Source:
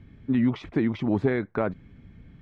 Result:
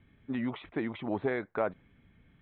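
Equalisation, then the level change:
Butterworth low-pass 3,900 Hz 96 dB per octave
low-shelf EQ 460 Hz −10.5 dB
dynamic equaliser 630 Hz, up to +6 dB, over −44 dBFS, Q 0.9
−4.0 dB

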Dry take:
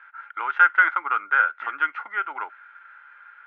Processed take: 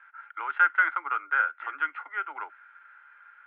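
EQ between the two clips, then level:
Butterworth high-pass 260 Hz 96 dB per octave
high-frequency loss of the air 420 metres
high-shelf EQ 2,800 Hz +11.5 dB
−5.0 dB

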